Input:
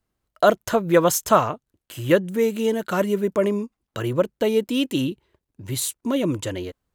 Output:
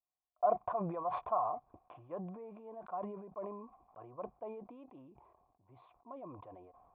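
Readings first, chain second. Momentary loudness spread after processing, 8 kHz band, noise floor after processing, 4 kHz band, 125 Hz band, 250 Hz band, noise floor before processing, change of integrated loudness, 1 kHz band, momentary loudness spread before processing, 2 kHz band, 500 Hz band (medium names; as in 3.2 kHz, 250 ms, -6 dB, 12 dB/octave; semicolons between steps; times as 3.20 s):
21 LU, under -40 dB, under -85 dBFS, under -40 dB, -22.0 dB, -24.5 dB, -83 dBFS, -17.5 dB, -11.5 dB, 12 LU, -31.5 dB, -20.0 dB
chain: cascade formant filter a; decay stretcher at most 41 dB/s; trim -7.5 dB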